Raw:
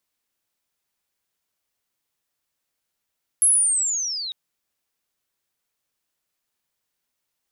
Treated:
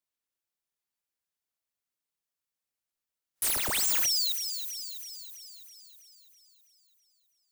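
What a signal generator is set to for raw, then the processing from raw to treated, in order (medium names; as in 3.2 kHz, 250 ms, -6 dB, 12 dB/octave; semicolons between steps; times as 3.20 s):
sweep linear 11 kHz -> 3.7 kHz -12.5 dBFS -> -28 dBFS 0.90 s
spectral noise reduction 12 dB; integer overflow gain 23.5 dB; on a send: feedback echo behind a high-pass 327 ms, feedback 59%, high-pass 4.5 kHz, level -6 dB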